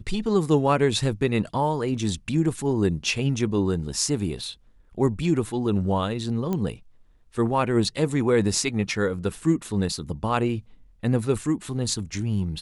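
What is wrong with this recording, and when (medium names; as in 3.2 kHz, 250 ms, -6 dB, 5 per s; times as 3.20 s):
6.53 s: pop -15 dBFS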